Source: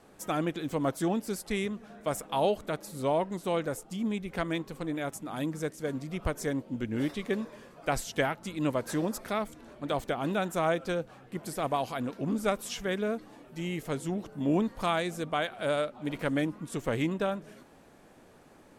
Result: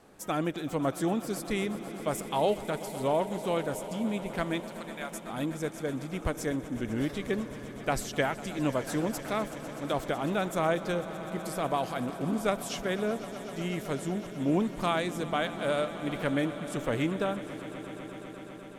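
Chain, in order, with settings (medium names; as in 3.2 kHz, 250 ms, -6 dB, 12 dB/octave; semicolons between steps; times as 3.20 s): 4.60–5.29 s: high-pass 800 Hz; echo with a slow build-up 125 ms, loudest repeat 5, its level -17.5 dB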